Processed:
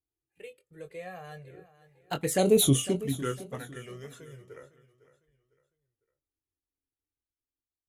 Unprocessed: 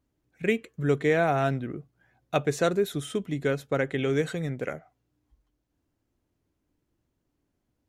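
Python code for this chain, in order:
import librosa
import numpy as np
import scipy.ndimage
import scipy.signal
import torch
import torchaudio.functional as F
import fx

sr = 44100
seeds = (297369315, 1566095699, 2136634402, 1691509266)

p1 = fx.doppler_pass(x, sr, speed_mps=33, closest_m=2.7, pass_at_s=2.63)
p2 = fx.peak_eq(p1, sr, hz=11000.0, db=14.0, octaves=0.76)
p3 = fx.level_steps(p2, sr, step_db=22)
p4 = p2 + (p3 * librosa.db_to_amplitude(0.5))
p5 = fx.env_flanger(p4, sr, rest_ms=2.5, full_db=-29.5)
p6 = fx.doubler(p5, sr, ms=22.0, db=-8)
p7 = p6 + fx.echo_feedback(p6, sr, ms=504, feedback_pct=34, wet_db=-16.5, dry=0)
y = p7 * librosa.db_to_amplitude(9.0)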